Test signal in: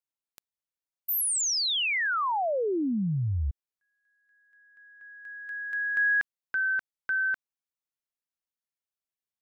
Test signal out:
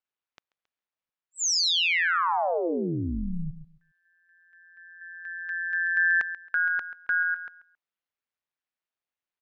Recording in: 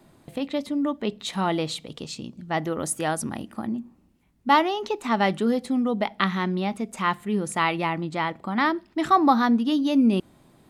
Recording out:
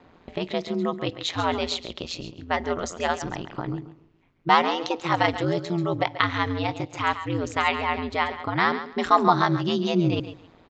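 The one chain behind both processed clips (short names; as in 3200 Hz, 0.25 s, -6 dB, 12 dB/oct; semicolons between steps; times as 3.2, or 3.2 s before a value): low shelf 400 Hz -8 dB; in parallel at -1.5 dB: compressor, threshold -34 dBFS; on the sum: downsampling 16000 Hz; on a send: feedback echo 0.136 s, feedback 20%, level -12 dB; on the sum: low-pass opened by the level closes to 2900 Hz, open at -19.5 dBFS; ring modulator 86 Hz; gain +3.5 dB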